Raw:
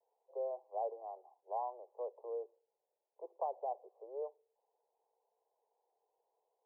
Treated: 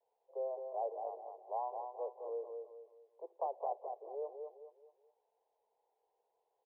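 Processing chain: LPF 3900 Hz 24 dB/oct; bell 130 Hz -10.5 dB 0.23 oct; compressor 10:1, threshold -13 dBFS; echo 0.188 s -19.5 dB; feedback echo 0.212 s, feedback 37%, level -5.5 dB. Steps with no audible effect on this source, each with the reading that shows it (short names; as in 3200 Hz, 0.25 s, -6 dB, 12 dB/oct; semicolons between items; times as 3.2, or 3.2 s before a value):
LPF 3900 Hz: input band ends at 1100 Hz; bell 130 Hz: input band starts at 320 Hz; compressor, threshold -13 dBFS: input peak -27.0 dBFS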